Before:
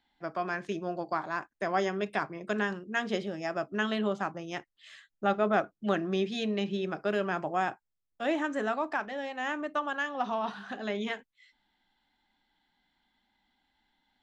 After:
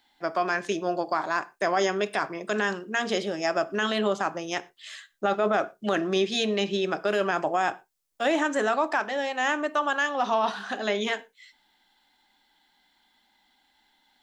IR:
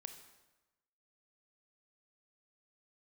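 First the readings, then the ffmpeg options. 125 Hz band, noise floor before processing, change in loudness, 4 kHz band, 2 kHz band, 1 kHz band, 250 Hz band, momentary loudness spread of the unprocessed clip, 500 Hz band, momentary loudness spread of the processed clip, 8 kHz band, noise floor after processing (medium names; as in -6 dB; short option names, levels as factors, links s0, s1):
0.0 dB, -82 dBFS, +5.5 dB, +9.0 dB, +6.0 dB, +5.5 dB, +2.5 dB, 6 LU, +5.5 dB, 6 LU, no reading, -68 dBFS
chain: -filter_complex "[0:a]bass=f=250:g=-10,treble=f=4000:g=9,alimiter=limit=0.075:level=0:latency=1:release=17,asplit=2[s0][s1];[1:a]atrim=start_sample=2205,afade=t=out:st=0.17:d=0.01,atrim=end_sample=7938,highshelf=f=4600:g=-11[s2];[s1][s2]afir=irnorm=-1:irlink=0,volume=0.891[s3];[s0][s3]amix=inputs=2:normalize=0,volume=1.78"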